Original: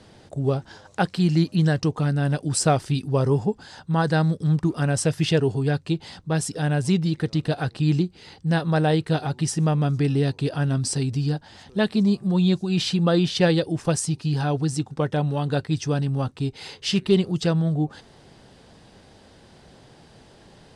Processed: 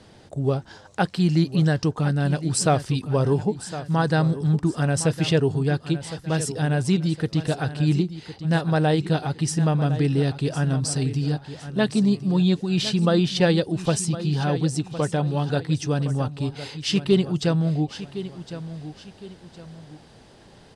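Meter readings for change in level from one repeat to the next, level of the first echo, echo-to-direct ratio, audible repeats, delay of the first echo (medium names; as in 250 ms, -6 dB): -9.0 dB, -13.0 dB, -12.5 dB, 2, 1060 ms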